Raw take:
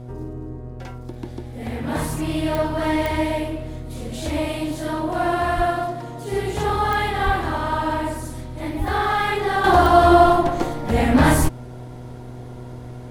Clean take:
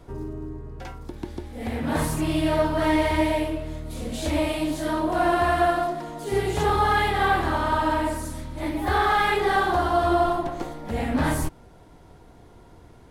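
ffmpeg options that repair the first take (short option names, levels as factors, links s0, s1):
-filter_complex "[0:a]adeclick=t=4,bandreject=f=123.3:t=h:w=4,bandreject=f=246.6:t=h:w=4,bandreject=f=369.9:t=h:w=4,bandreject=f=493.2:t=h:w=4,bandreject=f=616.5:t=h:w=4,bandreject=f=739.8:t=h:w=4,asplit=3[s0][s1][s2];[s0]afade=t=out:st=5.56:d=0.02[s3];[s1]highpass=f=140:w=0.5412,highpass=f=140:w=1.3066,afade=t=in:st=5.56:d=0.02,afade=t=out:st=5.68:d=0.02[s4];[s2]afade=t=in:st=5.68:d=0.02[s5];[s3][s4][s5]amix=inputs=3:normalize=0,asplit=3[s6][s7][s8];[s6]afade=t=out:st=7.25:d=0.02[s9];[s7]highpass=f=140:w=0.5412,highpass=f=140:w=1.3066,afade=t=in:st=7.25:d=0.02,afade=t=out:st=7.37:d=0.02[s10];[s8]afade=t=in:st=7.37:d=0.02[s11];[s9][s10][s11]amix=inputs=3:normalize=0,asplit=3[s12][s13][s14];[s12]afade=t=out:st=8.78:d=0.02[s15];[s13]highpass=f=140:w=0.5412,highpass=f=140:w=1.3066,afade=t=in:st=8.78:d=0.02,afade=t=out:st=8.9:d=0.02[s16];[s14]afade=t=in:st=8.9:d=0.02[s17];[s15][s16][s17]amix=inputs=3:normalize=0,asetnsamples=n=441:p=0,asendcmd='9.64 volume volume -8.5dB',volume=1"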